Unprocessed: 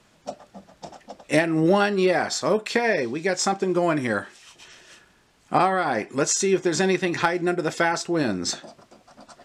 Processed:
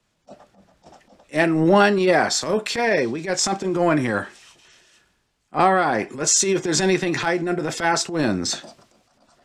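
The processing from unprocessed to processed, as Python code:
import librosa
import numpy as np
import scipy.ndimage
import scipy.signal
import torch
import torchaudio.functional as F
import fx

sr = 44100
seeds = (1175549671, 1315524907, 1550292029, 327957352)

y = fx.transient(x, sr, attack_db=-12, sustain_db=3)
y = fx.band_widen(y, sr, depth_pct=40)
y = y * librosa.db_to_amplitude(3.5)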